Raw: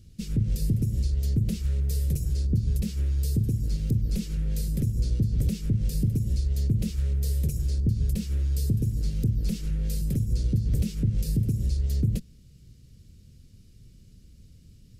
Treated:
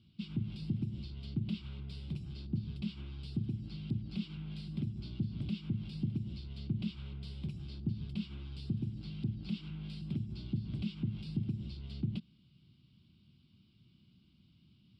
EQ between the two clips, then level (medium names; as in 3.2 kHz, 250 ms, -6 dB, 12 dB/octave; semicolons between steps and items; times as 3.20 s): cabinet simulation 260–4300 Hz, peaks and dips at 270 Hz -4 dB, 470 Hz -9 dB, 670 Hz -6 dB, 1.3 kHz -6 dB, 2.4 kHz -5 dB, 4.1 kHz -5 dB; static phaser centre 1.8 kHz, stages 6; +3.0 dB